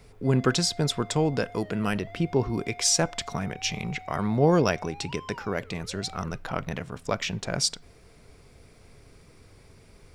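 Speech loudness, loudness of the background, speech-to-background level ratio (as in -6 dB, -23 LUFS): -27.0 LUFS, -46.5 LUFS, 19.5 dB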